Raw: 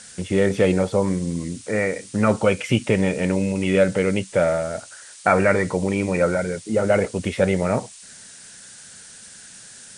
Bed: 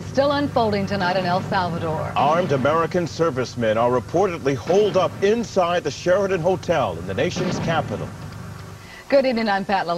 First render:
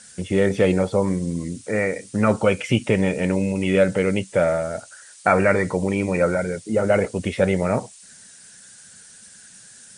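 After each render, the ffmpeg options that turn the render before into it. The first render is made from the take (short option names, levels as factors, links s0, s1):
-af "afftdn=nr=6:nf=-44"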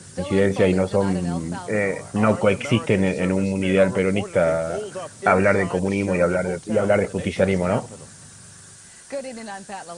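-filter_complex "[1:a]volume=0.2[s0];[0:a][s0]amix=inputs=2:normalize=0"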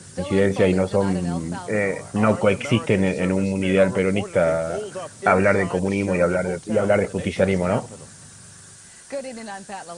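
-af anull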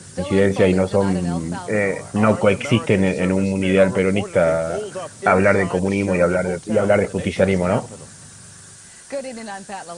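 -af "volume=1.33,alimiter=limit=0.794:level=0:latency=1"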